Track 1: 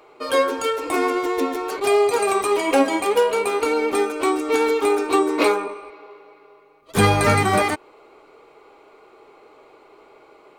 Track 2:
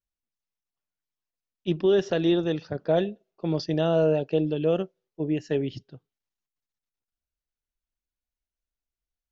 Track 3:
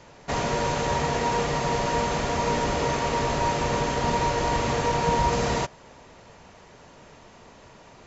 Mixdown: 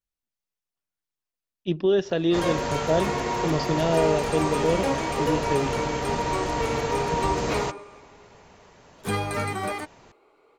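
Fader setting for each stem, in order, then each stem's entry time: -11.0, 0.0, -3.0 dB; 2.10, 0.00, 2.05 s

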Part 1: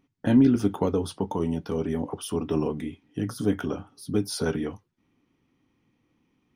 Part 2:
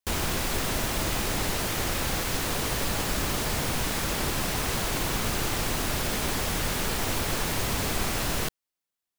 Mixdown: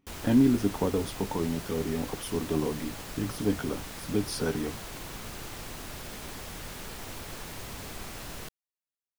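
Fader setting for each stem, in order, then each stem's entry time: -3.0, -12.5 dB; 0.00, 0.00 s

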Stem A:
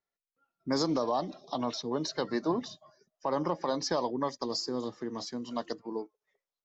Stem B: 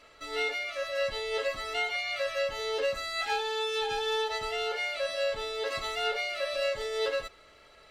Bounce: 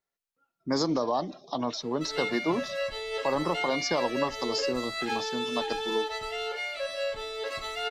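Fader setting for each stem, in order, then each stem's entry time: +2.0, -1.5 dB; 0.00, 1.80 s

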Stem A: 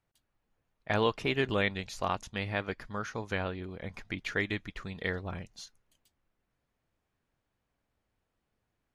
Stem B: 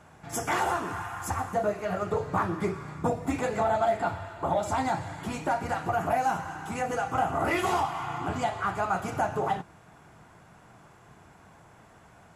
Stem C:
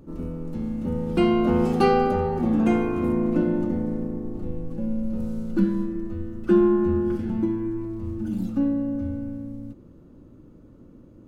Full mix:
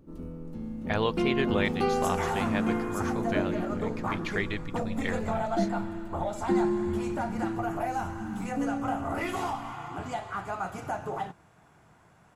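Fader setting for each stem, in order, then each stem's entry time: 0.0, -5.5, -8.0 dB; 0.00, 1.70, 0.00 s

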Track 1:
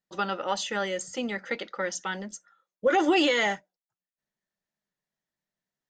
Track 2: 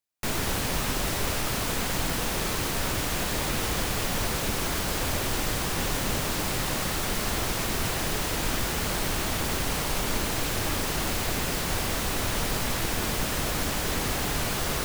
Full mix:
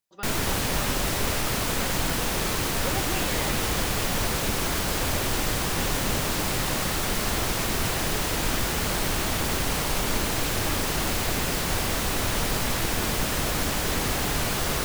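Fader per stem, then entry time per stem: -12.0, +2.0 dB; 0.00, 0.00 s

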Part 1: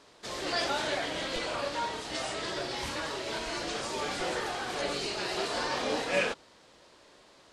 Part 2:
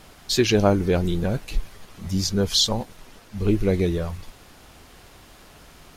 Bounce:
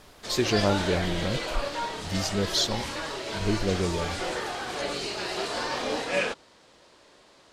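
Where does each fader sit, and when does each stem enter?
+1.5, -6.0 dB; 0.00, 0.00 s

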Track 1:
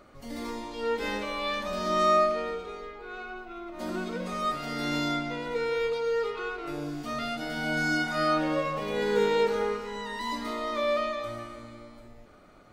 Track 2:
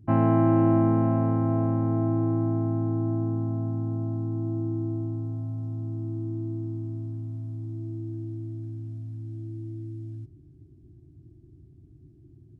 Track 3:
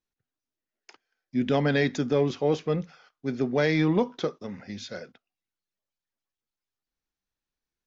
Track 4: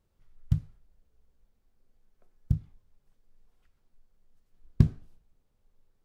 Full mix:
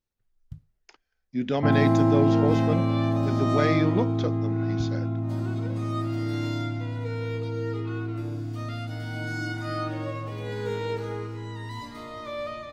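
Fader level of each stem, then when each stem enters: -6.5, 0.0, -2.0, -16.0 dB; 1.50, 1.55, 0.00, 0.00 s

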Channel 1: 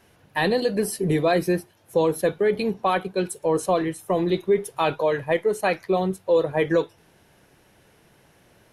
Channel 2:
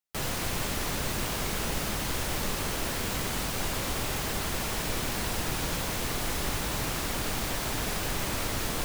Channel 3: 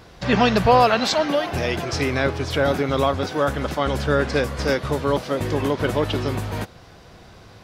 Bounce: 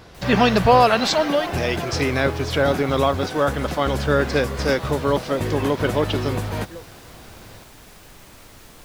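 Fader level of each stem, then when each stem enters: -18.5, -14.5, +1.0 dB; 0.00, 0.00, 0.00 s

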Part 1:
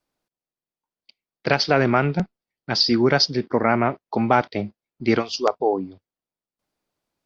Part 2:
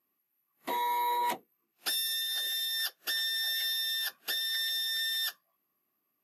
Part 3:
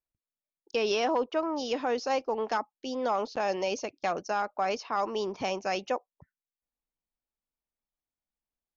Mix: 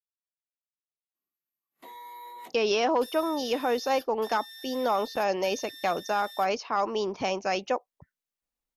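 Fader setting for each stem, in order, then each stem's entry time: off, -14.0 dB, +2.5 dB; off, 1.15 s, 1.80 s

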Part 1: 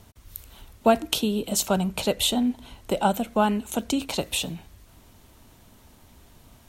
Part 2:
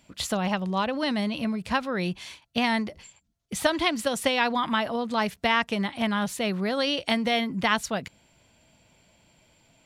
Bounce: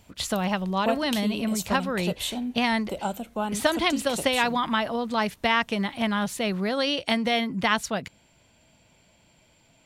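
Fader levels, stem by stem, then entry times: -7.5, +0.5 dB; 0.00, 0.00 s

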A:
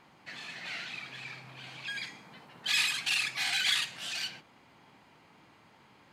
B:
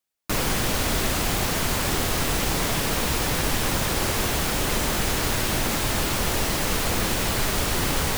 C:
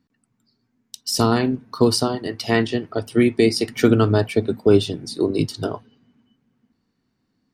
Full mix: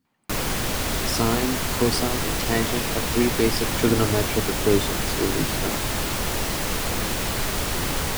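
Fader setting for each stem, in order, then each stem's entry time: -14.0, -1.5, -5.5 dB; 0.05, 0.00, 0.00 s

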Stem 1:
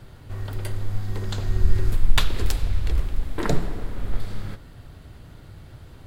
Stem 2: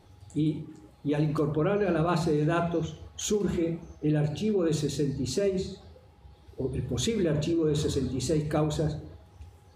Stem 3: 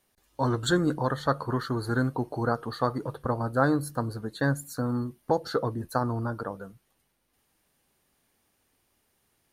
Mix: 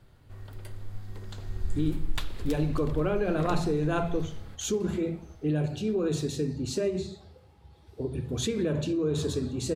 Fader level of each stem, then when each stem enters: -12.5 dB, -1.5 dB, off; 0.00 s, 1.40 s, off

